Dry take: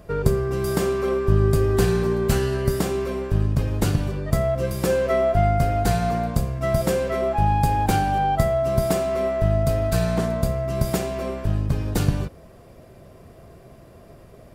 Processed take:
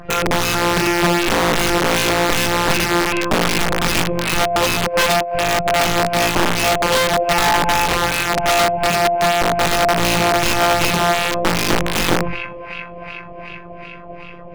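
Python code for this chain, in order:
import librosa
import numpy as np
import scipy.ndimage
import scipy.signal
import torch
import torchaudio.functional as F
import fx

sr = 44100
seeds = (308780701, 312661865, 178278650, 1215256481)

p1 = fx.rattle_buzz(x, sr, strikes_db=-25.0, level_db=-14.0)
p2 = 10.0 ** (-11.0 / 20.0) * np.tanh(p1 / 10.0 ** (-11.0 / 20.0))
p3 = p1 + F.gain(torch.from_numpy(p2), -5.0).numpy()
p4 = fx.filter_lfo_lowpass(p3, sr, shape='sine', hz=2.6, low_hz=580.0, high_hz=2900.0, q=2.8)
p5 = fx.hum_notches(p4, sr, base_hz=50, count=6)
p6 = fx.robotise(p5, sr, hz=173.0)
p7 = fx.low_shelf(p6, sr, hz=120.0, db=4.0)
p8 = fx.comb_fb(p7, sr, f0_hz=53.0, decay_s=0.3, harmonics='all', damping=0.0, mix_pct=40)
p9 = fx.over_compress(p8, sr, threshold_db=-19.0, ratio=-0.5)
p10 = p9 + fx.echo_thinned(p9, sr, ms=374, feedback_pct=78, hz=530.0, wet_db=-10.5, dry=0)
p11 = (np.mod(10.0 ** (15.0 / 20.0) * p10 + 1.0, 2.0) - 1.0) / 10.0 ** (15.0 / 20.0)
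p12 = fx.high_shelf(p11, sr, hz=6600.0, db=-7.0)
y = F.gain(torch.from_numpy(p12), 7.0).numpy()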